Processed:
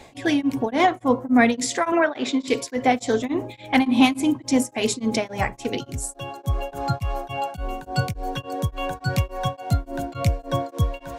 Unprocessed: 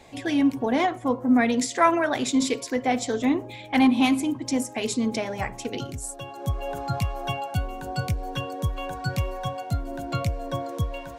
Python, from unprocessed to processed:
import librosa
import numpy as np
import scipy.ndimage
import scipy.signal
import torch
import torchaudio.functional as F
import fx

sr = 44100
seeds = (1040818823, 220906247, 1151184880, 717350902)

y = fx.bandpass_edges(x, sr, low_hz=250.0, high_hz=3600.0, at=(1.92, 2.48))
y = y * np.abs(np.cos(np.pi * 3.5 * np.arange(len(y)) / sr))
y = y * librosa.db_to_amplitude(6.0)